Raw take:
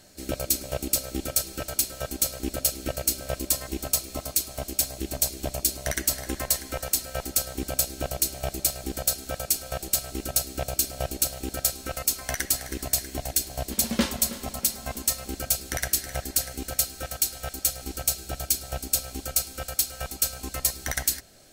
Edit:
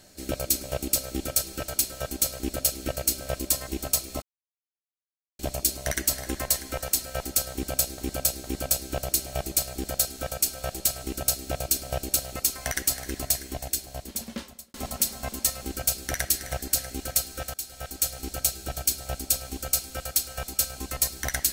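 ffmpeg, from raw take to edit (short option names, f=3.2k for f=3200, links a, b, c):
-filter_complex "[0:a]asplit=8[a][b][c][d][e][f][g][h];[a]atrim=end=4.22,asetpts=PTS-STARTPTS,afade=t=out:st=4.216:d=0.004:c=hsin[i];[b]atrim=start=4.22:end=5.39,asetpts=PTS-STARTPTS,volume=0[j];[c]atrim=start=5.39:end=7.982,asetpts=PTS-STARTPTS,afade=t=in:d=0.004:c=hsin[k];[d]atrim=start=7.518:end=7.982[l];[e]atrim=start=7.518:end=11.442[m];[f]atrim=start=11.988:end=14.37,asetpts=PTS-STARTPTS,afade=t=out:st=0.892:d=1.49[n];[g]atrim=start=14.37:end=17.17,asetpts=PTS-STARTPTS,afade=t=in:d=0.004:c=hsin,afade=t=out:st=2.796:d=0.004:c=hsin:silence=0.223872[o];[h]atrim=start=17.17,asetpts=PTS-STARTPTS,afade=t=in:d=0.73:c=qsin:silence=0.223872[p];[i][j][k]concat=n=3:v=0:a=1[q];[q][l]acrossfade=d=0.004:c1=hsin:c2=hsin[r];[r][m]acrossfade=d=0.004:c1=hsin:c2=hsin[s];[n][o][p]concat=n=3:v=0:a=1[t];[s][t]acrossfade=d=0.004:c1=hsin:c2=hsin"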